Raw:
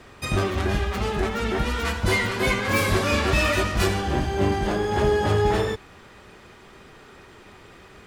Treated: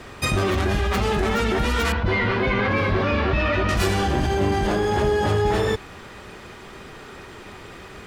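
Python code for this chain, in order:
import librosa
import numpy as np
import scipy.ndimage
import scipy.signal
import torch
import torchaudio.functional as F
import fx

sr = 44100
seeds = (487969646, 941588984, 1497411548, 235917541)

p1 = fx.air_absorb(x, sr, metres=300.0, at=(1.92, 3.69))
p2 = fx.over_compress(p1, sr, threshold_db=-28.0, ratio=-1.0)
p3 = p1 + (p2 * librosa.db_to_amplitude(1.0))
y = p3 * librosa.db_to_amplitude(-2.0)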